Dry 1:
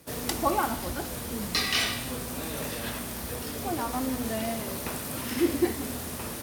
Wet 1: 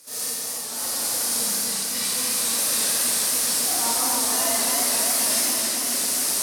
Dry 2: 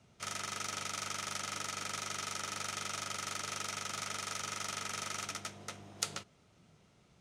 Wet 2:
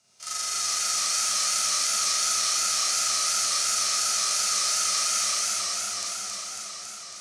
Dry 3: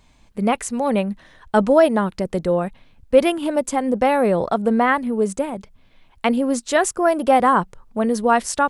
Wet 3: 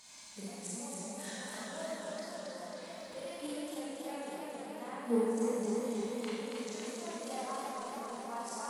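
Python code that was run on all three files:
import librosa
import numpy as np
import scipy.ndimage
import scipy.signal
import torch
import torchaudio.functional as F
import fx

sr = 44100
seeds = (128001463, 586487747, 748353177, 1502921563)

p1 = fx.gate_flip(x, sr, shuts_db=-15.0, range_db=-30)
p2 = fx.highpass(p1, sr, hz=1100.0, slope=6)
p3 = fx.band_shelf(p2, sr, hz=7100.0, db=11.0, octaves=1.7)
p4 = fx.quant_float(p3, sr, bits=2)
p5 = p3 + F.gain(torch.from_numpy(p4), -10.0).numpy()
p6 = fx.hpss(p5, sr, part='percussive', gain_db=-17)
p7 = fx.echo_split(p6, sr, split_hz=2000.0, low_ms=595, high_ms=166, feedback_pct=52, wet_db=-13.0)
p8 = fx.rev_schroeder(p7, sr, rt60_s=1.6, comb_ms=30, drr_db=-7.0)
y = fx.echo_warbled(p8, sr, ms=274, feedback_pct=76, rate_hz=2.8, cents=116, wet_db=-3.5)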